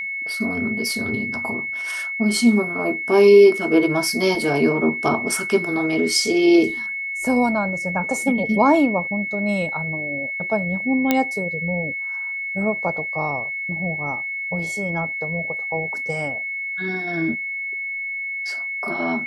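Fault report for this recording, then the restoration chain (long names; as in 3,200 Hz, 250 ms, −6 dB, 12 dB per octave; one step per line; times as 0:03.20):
whistle 2,200 Hz −25 dBFS
0:11.11: click −3 dBFS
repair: click removal
notch filter 2,200 Hz, Q 30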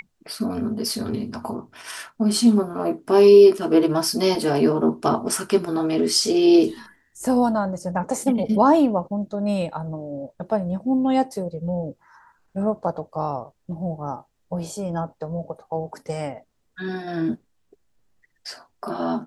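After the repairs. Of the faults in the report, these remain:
none of them is left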